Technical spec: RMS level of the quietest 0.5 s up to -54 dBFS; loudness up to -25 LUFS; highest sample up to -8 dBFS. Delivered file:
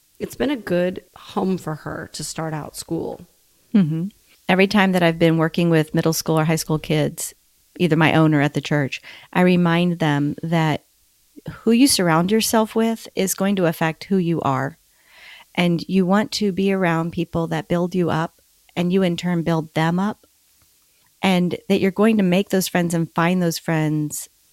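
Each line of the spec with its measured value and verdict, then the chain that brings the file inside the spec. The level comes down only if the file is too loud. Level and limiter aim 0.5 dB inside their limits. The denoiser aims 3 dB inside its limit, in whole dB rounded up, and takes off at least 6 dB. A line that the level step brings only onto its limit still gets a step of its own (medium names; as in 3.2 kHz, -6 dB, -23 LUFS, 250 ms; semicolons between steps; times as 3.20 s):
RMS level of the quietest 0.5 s -59 dBFS: pass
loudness -20.0 LUFS: fail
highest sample -2.5 dBFS: fail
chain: trim -5.5 dB; peak limiter -8.5 dBFS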